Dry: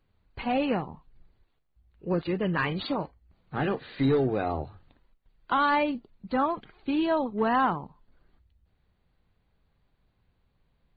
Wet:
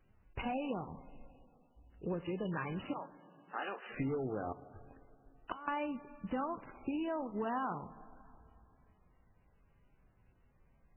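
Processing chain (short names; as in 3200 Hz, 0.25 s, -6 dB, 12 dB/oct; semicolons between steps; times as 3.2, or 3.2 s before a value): 2.93–3.9 HPF 760 Hz 12 dB/oct; 4.52–5.68 flipped gate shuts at -26 dBFS, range -25 dB; 6.97–7.46 elliptic low-pass 3600 Hz, stop band 40 dB; compressor 4:1, threshold -38 dBFS, peak gain reduction 14.5 dB; dynamic EQ 1900 Hz, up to -4 dB, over -59 dBFS, Q 3.3; reverb RT60 2.9 s, pre-delay 11 ms, DRR 15 dB; gain +1.5 dB; MP3 8 kbps 12000 Hz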